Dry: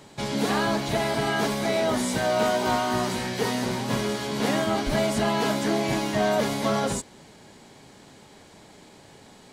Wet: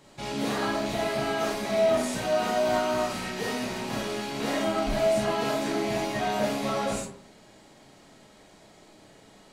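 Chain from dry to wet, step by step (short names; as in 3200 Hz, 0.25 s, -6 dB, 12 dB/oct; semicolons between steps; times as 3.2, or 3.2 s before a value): rattling part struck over -39 dBFS, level -29 dBFS; digital reverb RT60 0.51 s, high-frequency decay 0.5×, pre-delay 0 ms, DRR -3 dB; gain -8 dB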